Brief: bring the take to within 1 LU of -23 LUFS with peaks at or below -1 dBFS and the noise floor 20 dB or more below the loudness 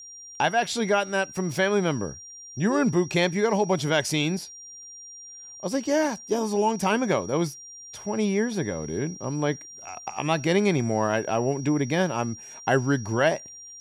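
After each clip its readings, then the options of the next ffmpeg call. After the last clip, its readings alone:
steady tone 5700 Hz; tone level -41 dBFS; loudness -25.5 LUFS; peak -8.0 dBFS; loudness target -23.0 LUFS
-> -af "bandreject=f=5.7k:w=30"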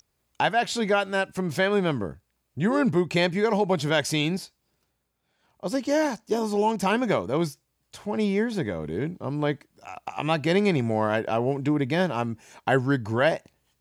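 steady tone none; loudness -25.5 LUFS; peak -8.5 dBFS; loudness target -23.0 LUFS
-> -af "volume=2.5dB"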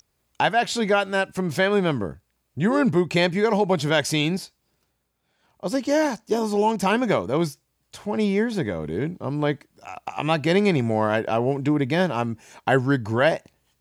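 loudness -23.0 LUFS; peak -6.0 dBFS; noise floor -73 dBFS

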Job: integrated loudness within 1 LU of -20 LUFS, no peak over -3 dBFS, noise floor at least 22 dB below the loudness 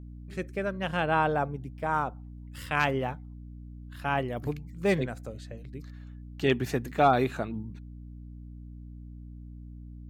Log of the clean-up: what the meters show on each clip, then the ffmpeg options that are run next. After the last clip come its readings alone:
hum 60 Hz; harmonics up to 300 Hz; hum level -41 dBFS; loudness -29.5 LUFS; peak -11.5 dBFS; loudness target -20.0 LUFS
-> -af "bandreject=f=60:t=h:w=6,bandreject=f=120:t=h:w=6,bandreject=f=180:t=h:w=6,bandreject=f=240:t=h:w=6,bandreject=f=300:t=h:w=6"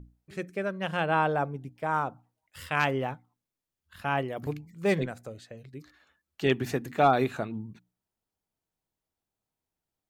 hum none; loudness -29.5 LUFS; peak -11.5 dBFS; loudness target -20.0 LUFS
-> -af "volume=9.5dB,alimiter=limit=-3dB:level=0:latency=1"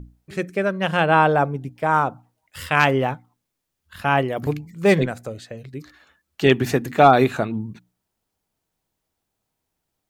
loudness -20.0 LUFS; peak -3.0 dBFS; noise floor -80 dBFS

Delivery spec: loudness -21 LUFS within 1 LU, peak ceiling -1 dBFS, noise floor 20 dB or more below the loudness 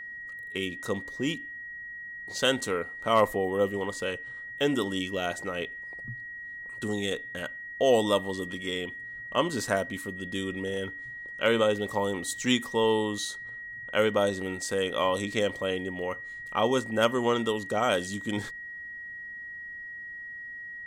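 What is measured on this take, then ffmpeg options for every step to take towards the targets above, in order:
steady tone 1900 Hz; tone level -38 dBFS; loudness -29.5 LUFS; peak -10.0 dBFS; loudness target -21.0 LUFS
-> -af "bandreject=f=1.9k:w=30"
-af "volume=8.5dB"

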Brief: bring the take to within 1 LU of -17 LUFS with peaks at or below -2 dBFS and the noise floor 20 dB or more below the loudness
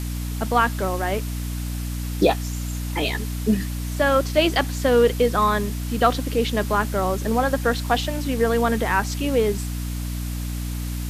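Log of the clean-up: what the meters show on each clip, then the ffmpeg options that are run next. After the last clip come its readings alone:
hum 60 Hz; harmonics up to 300 Hz; hum level -25 dBFS; noise floor -28 dBFS; noise floor target -43 dBFS; loudness -22.5 LUFS; peak -4.5 dBFS; loudness target -17.0 LUFS
-> -af "bandreject=f=60:t=h:w=4,bandreject=f=120:t=h:w=4,bandreject=f=180:t=h:w=4,bandreject=f=240:t=h:w=4,bandreject=f=300:t=h:w=4"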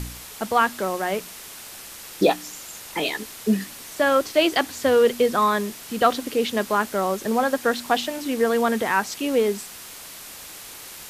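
hum none; noise floor -40 dBFS; noise floor target -43 dBFS
-> -af "afftdn=nr=6:nf=-40"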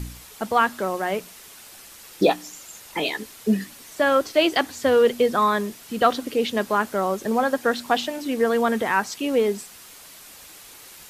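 noise floor -45 dBFS; loudness -22.5 LUFS; peak -5.5 dBFS; loudness target -17.0 LUFS
-> -af "volume=5.5dB,alimiter=limit=-2dB:level=0:latency=1"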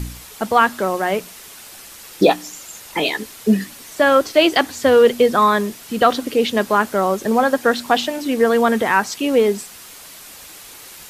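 loudness -17.5 LUFS; peak -2.0 dBFS; noise floor -40 dBFS

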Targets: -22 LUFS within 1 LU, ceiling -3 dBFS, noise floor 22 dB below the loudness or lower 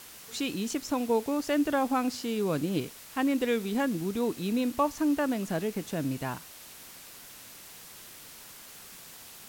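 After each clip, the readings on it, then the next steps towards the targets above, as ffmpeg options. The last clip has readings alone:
noise floor -49 dBFS; noise floor target -52 dBFS; loudness -30.0 LUFS; peak -15.5 dBFS; loudness target -22.0 LUFS
-> -af "afftdn=nr=6:nf=-49"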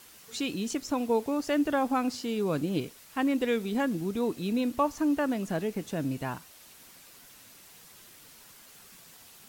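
noise floor -53 dBFS; loudness -30.0 LUFS; peak -15.5 dBFS; loudness target -22.0 LUFS
-> -af "volume=8dB"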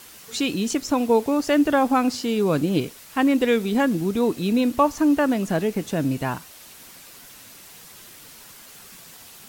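loudness -22.0 LUFS; peak -7.5 dBFS; noise floor -45 dBFS

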